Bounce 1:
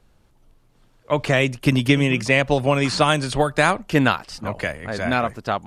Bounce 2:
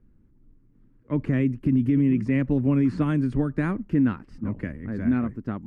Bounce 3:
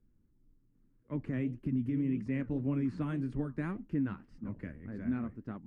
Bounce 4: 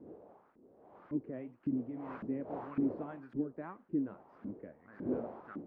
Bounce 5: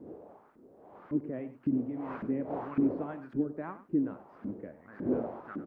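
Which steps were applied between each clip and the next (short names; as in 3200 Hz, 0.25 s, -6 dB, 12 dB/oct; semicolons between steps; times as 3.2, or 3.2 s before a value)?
EQ curve 150 Hz 0 dB, 270 Hz +6 dB, 700 Hz -21 dB, 1000 Hz -16 dB, 1900 Hz -13 dB, 3600 Hz -29 dB; limiter -13.5 dBFS, peak gain reduction 10 dB
flange 1.8 Hz, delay 4.3 ms, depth 8.9 ms, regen -71%; gain -7 dB
wind noise 390 Hz -43 dBFS; LFO band-pass saw up 1.8 Hz 270–1600 Hz; gain +3.5 dB
echo 96 ms -14.5 dB; gain +5 dB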